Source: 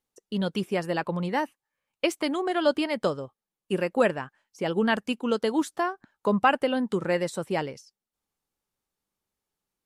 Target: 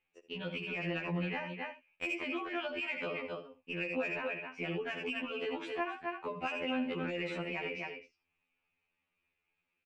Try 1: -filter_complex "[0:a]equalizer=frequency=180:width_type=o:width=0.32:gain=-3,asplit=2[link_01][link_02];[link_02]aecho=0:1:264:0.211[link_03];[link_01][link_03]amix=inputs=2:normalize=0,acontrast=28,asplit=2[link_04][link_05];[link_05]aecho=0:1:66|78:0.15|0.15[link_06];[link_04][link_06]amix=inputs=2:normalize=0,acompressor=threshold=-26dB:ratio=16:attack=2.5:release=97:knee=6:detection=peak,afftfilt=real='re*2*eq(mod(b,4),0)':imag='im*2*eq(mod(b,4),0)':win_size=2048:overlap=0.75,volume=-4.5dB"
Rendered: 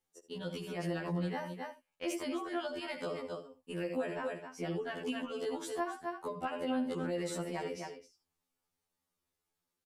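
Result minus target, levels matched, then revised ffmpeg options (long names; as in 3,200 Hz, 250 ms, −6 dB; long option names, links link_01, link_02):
2,000 Hz band −6.5 dB
-filter_complex "[0:a]lowpass=frequency=2500:width_type=q:width=13,equalizer=frequency=180:width_type=o:width=0.32:gain=-3,asplit=2[link_01][link_02];[link_02]aecho=0:1:264:0.211[link_03];[link_01][link_03]amix=inputs=2:normalize=0,acontrast=28,asplit=2[link_04][link_05];[link_05]aecho=0:1:66|78:0.15|0.15[link_06];[link_04][link_06]amix=inputs=2:normalize=0,acompressor=threshold=-26dB:ratio=16:attack=2.5:release=97:knee=6:detection=peak,afftfilt=real='re*2*eq(mod(b,4),0)':imag='im*2*eq(mod(b,4),0)':win_size=2048:overlap=0.75,volume=-4.5dB"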